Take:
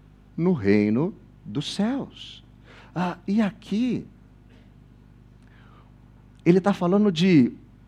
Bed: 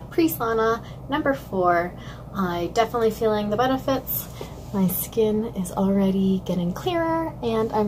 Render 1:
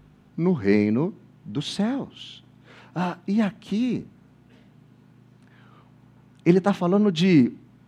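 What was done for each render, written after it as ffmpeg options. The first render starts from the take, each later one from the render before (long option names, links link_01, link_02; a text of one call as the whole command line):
ffmpeg -i in.wav -af "bandreject=frequency=50:width_type=h:width=4,bandreject=frequency=100:width_type=h:width=4" out.wav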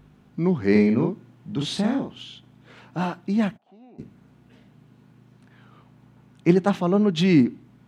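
ffmpeg -i in.wav -filter_complex "[0:a]asettb=1/sr,asplit=3[link_01][link_02][link_03];[link_01]atrim=end=0.714[link_04];[link_02]atrim=start=0.71:end=2.23,asetpts=PTS-STARTPTS,afade=type=in:duration=0.004:curve=qsin,afade=type=out:start_time=1.516:duration=0.004:curve=qsin,asplit=2[link_05][link_06];[link_06]adelay=43,volume=-3.5dB[link_07];[link_05][link_07]amix=inputs=2:normalize=0,atrim=end_sample=67032[link_08];[link_03]atrim=start=2.226[link_09];[link_04][link_08]acrossfade=duration=0.004:curve1=hsin:curve2=qsin[link_10];[link_10][link_09]acrossfade=duration=0.004:curve1=qsin:curve2=hsin,asplit=3[link_11][link_12][link_13];[link_11]afade=type=out:start_time=3.56:duration=0.02[link_14];[link_12]bandpass=frequency=730:width_type=q:width=8.1,afade=type=in:start_time=3.56:duration=0.02,afade=type=out:start_time=3.98:duration=0.02[link_15];[link_13]afade=type=in:start_time=3.98:duration=0.02[link_16];[link_14][link_15][link_16]amix=inputs=3:normalize=0" out.wav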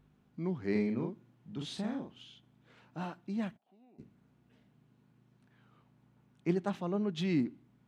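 ffmpeg -i in.wav -af "volume=-13.5dB" out.wav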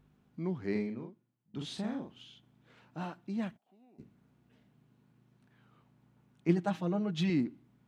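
ffmpeg -i in.wav -filter_complex "[0:a]asettb=1/sr,asplit=3[link_01][link_02][link_03];[link_01]atrim=end=6.484[link_04];[link_02]atrim=start=6.48:end=7.3,asetpts=PTS-STARTPTS,afade=type=in:duration=0.004:curve=qsin,afade=type=out:start_time=0.816:duration=0.004:curve=qsin,aecho=1:1:6.3:0.76,atrim=end_sample=36162[link_05];[link_03]atrim=start=7.296[link_06];[link_04][link_05]acrossfade=duration=0.004:curve1=hsin:curve2=qsin[link_07];[link_07][link_06]acrossfade=duration=0.004:curve1=qsin:curve2=hsin,asplit=2[link_08][link_09];[link_08]atrim=end=1.54,asetpts=PTS-STARTPTS,afade=type=out:start_time=0.64:duration=0.9:curve=qua:silence=0.0841395[link_10];[link_09]atrim=start=1.54,asetpts=PTS-STARTPTS,afade=type=in:duration=0.004:curve=hsin:silence=0.0841395[link_11];[link_10][link_11]concat=n=2:v=0:a=1" out.wav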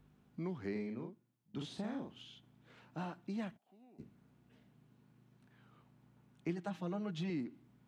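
ffmpeg -i in.wav -filter_complex "[0:a]acrossover=split=360|1100[link_01][link_02][link_03];[link_01]acompressor=threshold=-41dB:ratio=4[link_04];[link_02]acompressor=threshold=-45dB:ratio=4[link_05];[link_03]acompressor=threshold=-51dB:ratio=4[link_06];[link_04][link_05][link_06]amix=inputs=3:normalize=0" out.wav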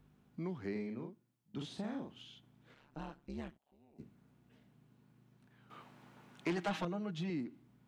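ffmpeg -i in.wav -filter_complex "[0:a]asettb=1/sr,asplit=3[link_01][link_02][link_03];[link_01]atrim=end=2.744[link_04];[link_02]atrim=start=2.74:end=3.96,asetpts=PTS-STARTPTS,afade=type=in:duration=0.004:curve=qsin,afade=type=out:start_time=1.216:duration=0.004:curve=qsin,tremolo=f=140:d=0.947[link_05];[link_03]atrim=start=3.956[link_06];[link_04][link_05]acrossfade=duration=0.004:curve1=hsin:curve2=qsin[link_07];[link_07][link_06]acrossfade=duration=0.004:curve1=qsin:curve2=hsin,asettb=1/sr,asplit=3[link_08][link_09][link_10];[link_08]atrim=end=5.704[link_11];[link_09]atrim=start=5.7:end=6.85,asetpts=PTS-STARTPTS,afade=type=in:duration=0.004:curve=qsin,afade=type=out:start_time=1.146:duration=0.004:curve=qsin,asplit=2[link_12][link_13];[link_13]highpass=frequency=720:poles=1,volume=22dB,asoftclip=type=tanh:threshold=-26.5dB[link_14];[link_12][link_14]amix=inputs=2:normalize=0,lowpass=frequency=4700:poles=1,volume=-6dB[link_15];[link_10]atrim=start=6.846[link_16];[link_11][link_15]acrossfade=duration=0.004:curve1=hsin:curve2=qsin[link_17];[link_17][link_16]acrossfade=duration=0.004:curve1=qsin:curve2=hsin" out.wav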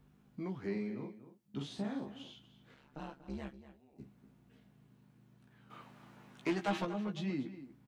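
ffmpeg -i in.wav -filter_complex "[0:a]asplit=2[link_01][link_02];[link_02]adelay=15,volume=-5dB[link_03];[link_01][link_03]amix=inputs=2:normalize=0,asplit=2[link_04][link_05];[link_05]adelay=239.1,volume=-13dB,highshelf=frequency=4000:gain=-5.38[link_06];[link_04][link_06]amix=inputs=2:normalize=0" out.wav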